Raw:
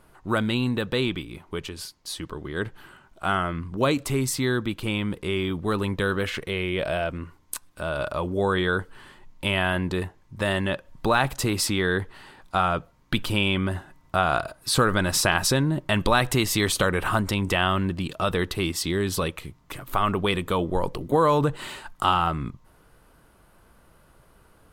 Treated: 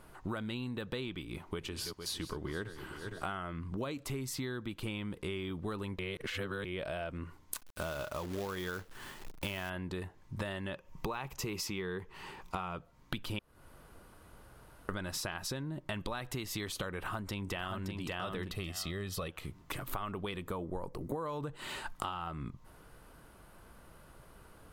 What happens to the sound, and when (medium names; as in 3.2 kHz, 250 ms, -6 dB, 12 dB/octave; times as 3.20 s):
1.27–3.33 s: backward echo that repeats 229 ms, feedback 64%, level -12.5 dB
5.99–6.65 s: reverse
7.54–9.70 s: companded quantiser 4-bit
10.75–12.76 s: rippled EQ curve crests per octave 0.77, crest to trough 7 dB
13.39–14.89 s: room tone
16.99–17.94 s: echo throw 570 ms, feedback 15%, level -4 dB
18.52–19.28 s: comb 1.6 ms, depth 51%
20.48–21.26 s: peaking EQ 3.2 kHz -11.5 dB 0.76 oct
whole clip: dynamic bell 8.7 kHz, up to -5 dB, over -49 dBFS, Q 3.1; compression 12:1, threshold -35 dBFS